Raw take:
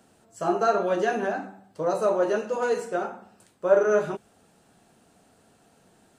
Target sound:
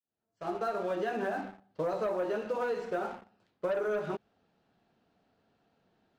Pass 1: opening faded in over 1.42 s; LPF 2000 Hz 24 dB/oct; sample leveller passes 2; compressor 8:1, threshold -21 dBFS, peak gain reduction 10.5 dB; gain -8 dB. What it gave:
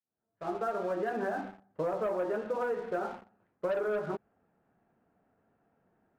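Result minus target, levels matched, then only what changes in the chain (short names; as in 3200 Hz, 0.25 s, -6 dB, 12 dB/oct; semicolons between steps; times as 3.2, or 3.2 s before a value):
4000 Hz band -5.0 dB
change: LPF 4600 Hz 24 dB/oct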